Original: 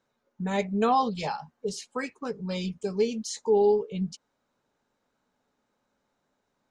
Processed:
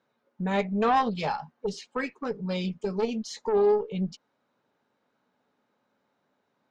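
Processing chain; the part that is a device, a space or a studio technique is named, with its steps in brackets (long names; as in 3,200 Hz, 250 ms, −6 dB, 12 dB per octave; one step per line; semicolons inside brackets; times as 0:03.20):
valve radio (band-pass filter 120–4,100 Hz; tube saturation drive 19 dB, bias 0.4; saturating transformer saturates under 270 Hz)
level +4 dB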